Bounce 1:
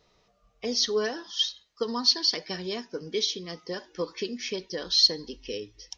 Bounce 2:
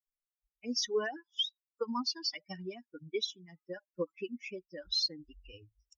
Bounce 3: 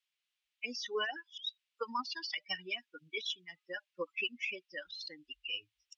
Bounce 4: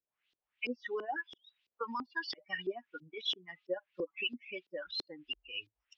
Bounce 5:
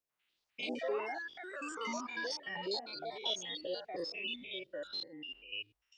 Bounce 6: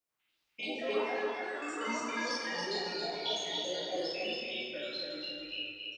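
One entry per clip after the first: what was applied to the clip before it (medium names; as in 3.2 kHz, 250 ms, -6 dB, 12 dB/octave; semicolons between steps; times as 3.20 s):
expander on every frequency bin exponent 3; peak limiter -23 dBFS, peak gain reduction 11 dB
band-pass filter 2.9 kHz, Q 2.2; compressor with a negative ratio -50 dBFS, ratio -1; trim +11.5 dB
peak limiter -33.5 dBFS, peak gain reduction 10.5 dB; LFO low-pass saw up 3 Hz 340–4800 Hz; trim +4 dB
spectrogram pixelated in time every 100 ms; ever faster or slower copies 128 ms, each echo +4 st, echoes 2; trim +2.5 dB
on a send: feedback delay 277 ms, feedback 36%, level -3.5 dB; on the sum: plate-style reverb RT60 1.3 s, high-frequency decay 0.8×, DRR -1.5 dB; trim -1 dB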